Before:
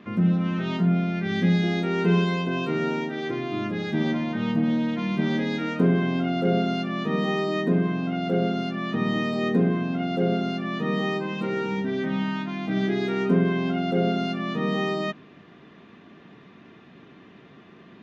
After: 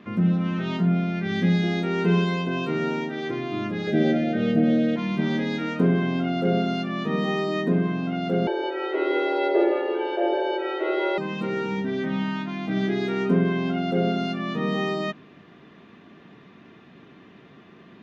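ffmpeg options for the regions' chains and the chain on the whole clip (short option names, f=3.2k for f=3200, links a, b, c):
-filter_complex "[0:a]asettb=1/sr,asplit=3[a][b][c];[a]atrim=end=3.874[d];[b]atrim=start=3.87:end=4.96,asetpts=PTS-STARTPTS,afade=t=in:d=0.004:c=qsin,afade=t=out:st=1.086:d=0.004:c=qsin,asuperstop=centerf=1000:order=8:qfactor=2,equalizer=f=530:w=0.94:g=10[e];[c]atrim=start=4.956[f];[d][e]acrossfade=d=0.004:c1=hsin:c2=qsin[g];[g][f]acrossfade=d=0.004:c1=qsin:c2=hsin,asettb=1/sr,asplit=3[h][i][j];[h]atrim=end=8.474[k];[i]atrim=start=8.47:end=11.18,asetpts=PTS-STARTPTS,afade=t=in:d=0.004:c=qsin,afade=t=out:st=2.706:d=0.004:c=qsin,aecho=1:1:163|326|489|652|815|978:0.473|0.232|0.114|0.0557|0.0273|0.0134,atrim=end_sample=119511,afreqshift=170,highpass=120,lowpass=3.3k[l];[j]atrim=start=11.176[m];[k][l]acrossfade=d=0.004:c1=hsin:c2=qsin[n];[n][m]acrossfade=d=0.004:c1=qsin:c2=hsin"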